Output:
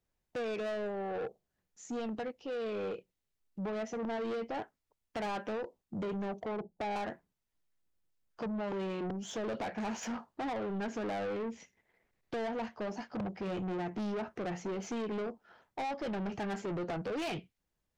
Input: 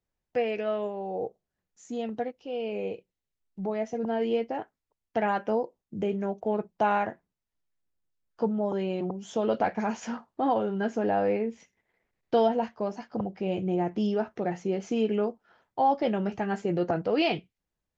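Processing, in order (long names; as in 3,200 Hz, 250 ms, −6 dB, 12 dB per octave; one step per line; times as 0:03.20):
0:06.45–0:06.96: elliptic low-pass filter 830 Hz
downward compressor 6 to 1, threshold −26 dBFS, peak gain reduction 7.5 dB
soft clipping −35 dBFS, distortion −8 dB
level +1.5 dB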